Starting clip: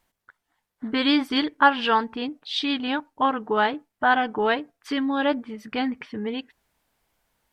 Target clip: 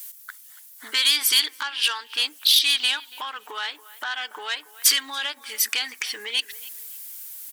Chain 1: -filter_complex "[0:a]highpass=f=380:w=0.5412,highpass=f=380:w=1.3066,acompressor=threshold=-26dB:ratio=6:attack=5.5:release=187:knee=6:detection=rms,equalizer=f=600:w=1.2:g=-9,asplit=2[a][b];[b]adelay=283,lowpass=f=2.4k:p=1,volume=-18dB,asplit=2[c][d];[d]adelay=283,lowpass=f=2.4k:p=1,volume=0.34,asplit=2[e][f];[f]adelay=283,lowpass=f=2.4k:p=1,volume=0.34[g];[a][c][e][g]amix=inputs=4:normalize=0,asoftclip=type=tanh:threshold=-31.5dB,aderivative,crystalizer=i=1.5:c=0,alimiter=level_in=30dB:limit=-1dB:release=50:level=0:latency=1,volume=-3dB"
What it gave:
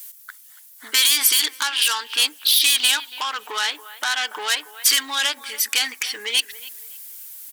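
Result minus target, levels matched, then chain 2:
compressor: peak gain reduction -8.5 dB
-filter_complex "[0:a]highpass=f=380:w=0.5412,highpass=f=380:w=1.3066,acompressor=threshold=-36dB:ratio=6:attack=5.5:release=187:knee=6:detection=rms,equalizer=f=600:w=1.2:g=-9,asplit=2[a][b];[b]adelay=283,lowpass=f=2.4k:p=1,volume=-18dB,asplit=2[c][d];[d]adelay=283,lowpass=f=2.4k:p=1,volume=0.34,asplit=2[e][f];[f]adelay=283,lowpass=f=2.4k:p=1,volume=0.34[g];[a][c][e][g]amix=inputs=4:normalize=0,asoftclip=type=tanh:threshold=-31.5dB,aderivative,crystalizer=i=1.5:c=0,alimiter=level_in=30dB:limit=-1dB:release=50:level=0:latency=1,volume=-3dB"

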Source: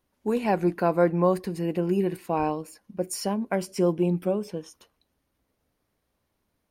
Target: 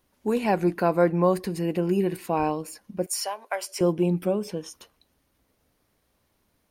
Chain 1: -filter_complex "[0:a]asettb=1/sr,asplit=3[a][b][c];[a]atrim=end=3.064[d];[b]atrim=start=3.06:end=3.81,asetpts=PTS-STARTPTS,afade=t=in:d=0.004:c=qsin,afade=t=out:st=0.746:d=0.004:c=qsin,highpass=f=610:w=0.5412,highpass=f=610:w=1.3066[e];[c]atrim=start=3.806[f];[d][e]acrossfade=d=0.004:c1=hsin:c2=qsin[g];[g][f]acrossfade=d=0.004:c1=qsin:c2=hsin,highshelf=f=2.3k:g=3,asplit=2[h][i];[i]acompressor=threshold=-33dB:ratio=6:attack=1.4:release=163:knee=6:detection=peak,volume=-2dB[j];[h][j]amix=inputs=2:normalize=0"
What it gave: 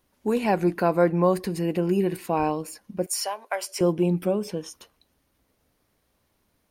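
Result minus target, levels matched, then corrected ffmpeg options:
compressor: peak gain reduction -6 dB
-filter_complex "[0:a]asettb=1/sr,asplit=3[a][b][c];[a]atrim=end=3.064[d];[b]atrim=start=3.06:end=3.81,asetpts=PTS-STARTPTS,afade=t=in:d=0.004:c=qsin,afade=t=out:st=0.746:d=0.004:c=qsin,highpass=f=610:w=0.5412,highpass=f=610:w=1.3066[e];[c]atrim=start=3.806[f];[d][e]acrossfade=d=0.004:c1=hsin:c2=qsin[g];[g][f]acrossfade=d=0.004:c1=qsin:c2=hsin,highshelf=f=2.3k:g=3,asplit=2[h][i];[i]acompressor=threshold=-40dB:ratio=6:attack=1.4:release=163:knee=6:detection=peak,volume=-2dB[j];[h][j]amix=inputs=2:normalize=0"

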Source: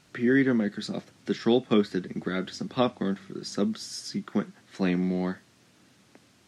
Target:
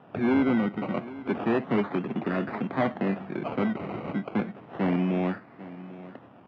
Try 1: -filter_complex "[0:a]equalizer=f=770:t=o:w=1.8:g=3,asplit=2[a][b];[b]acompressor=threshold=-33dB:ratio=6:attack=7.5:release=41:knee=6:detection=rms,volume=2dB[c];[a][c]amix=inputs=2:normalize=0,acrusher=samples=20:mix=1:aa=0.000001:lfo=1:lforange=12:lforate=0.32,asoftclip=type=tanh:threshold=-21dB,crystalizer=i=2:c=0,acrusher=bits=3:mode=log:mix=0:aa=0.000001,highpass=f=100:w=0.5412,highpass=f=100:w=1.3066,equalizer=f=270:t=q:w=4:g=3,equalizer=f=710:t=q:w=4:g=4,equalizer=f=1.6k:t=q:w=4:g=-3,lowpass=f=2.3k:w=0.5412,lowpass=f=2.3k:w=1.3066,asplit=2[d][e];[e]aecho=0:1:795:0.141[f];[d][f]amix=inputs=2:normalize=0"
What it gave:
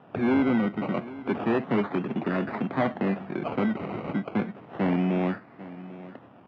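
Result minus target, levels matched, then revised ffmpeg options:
compressor: peak gain reduction -5.5 dB
-filter_complex "[0:a]equalizer=f=770:t=o:w=1.8:g=3,asplit=2[a][b];[b]acompressor=threshold=-39.5dB:ratio=6:attack=7.5:release=41:knee=6:detection=rms,volume=2dB[c];[a][c]amix=inputs=2:normalize=0,acrusher=samples=20:mix=1:aa=0.000001:lfo=1:lforange=12:lforate=0.32,asoftclip=type=tanh:threshold=-21dB,crystalizer=i=2:c=0,acrusher=bits=3:mode=log:mix=0:aa=0.000001,highpass=f=100:w=0.5412,highpass=f=100:w=1.3066,equalizer=f=270:t=q:w=4:g=3,equalizer=f=710:t=q:w=4:g=4,equalizer=f=1.6k:t=q:w=4:g=-3,lowpass=f=2.3k:w=0.5412,lowpass=f=2.3k:w=1.3066,asplit=2[d][e];[e]aecho=0:1:795:0.141[f];[d][f]amix=inputs=2:normalize=0"

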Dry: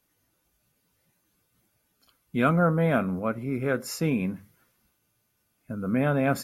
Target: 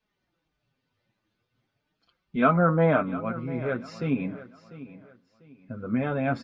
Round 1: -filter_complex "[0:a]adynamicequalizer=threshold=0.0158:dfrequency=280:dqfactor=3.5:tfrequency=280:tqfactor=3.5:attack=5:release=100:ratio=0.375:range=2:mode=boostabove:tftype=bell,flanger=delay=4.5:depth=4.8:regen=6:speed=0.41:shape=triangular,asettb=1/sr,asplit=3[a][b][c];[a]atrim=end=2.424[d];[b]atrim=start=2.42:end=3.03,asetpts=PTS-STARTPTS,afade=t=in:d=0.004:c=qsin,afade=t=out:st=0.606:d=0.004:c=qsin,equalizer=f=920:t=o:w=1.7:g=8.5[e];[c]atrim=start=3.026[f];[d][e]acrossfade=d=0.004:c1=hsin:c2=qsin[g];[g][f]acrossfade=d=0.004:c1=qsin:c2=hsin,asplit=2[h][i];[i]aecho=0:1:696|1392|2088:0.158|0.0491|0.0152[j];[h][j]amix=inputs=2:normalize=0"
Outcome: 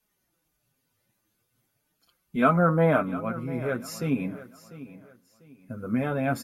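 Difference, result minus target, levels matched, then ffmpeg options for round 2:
4000 Hz band +2.5 dB
-filter_complex "[0:a]adynamicequalizer=threshold=0.0158:dfrequency=280:dqfactor=3.5:tfrequency=280:tqfactor=3.5:attack=5:release=100:ratio=0.375:range=2:mode=boostabove:tftype=bell,lowpass=f=4.5k:w=0.5412,lowpass=f=4.5k:w=1.3066,flanger=delay=4.5:depth=4.8:regen=6:speed=0.41:shape=triangular,asettb=1/sr,asplit=3[a][b][c];[a]atrim=end=2.424[d];[b]atrim=start=2.42:end=3.03,asetpts=PTS-STARTPTS,afade=t=in:d=0.004:c=qsin,afade=t=out:st=0.606:d=0.004:c=qsin,equalizer=f=920:t=o:w=1.7:g=8.5[e];[c]atrim=start=3.026[f];[d][e]acrossfade=d=0.004:c1=hsin:c2=qsin[g];[g][f]acrossfade=d=0.004:c1=qsin:c2=hsin,asplit=2[h][i];[i]aecho=0:1:696|1392|2088:0.158|0.0491|0.0152[j];[h][j]amix=inputs=2:normalize=0"

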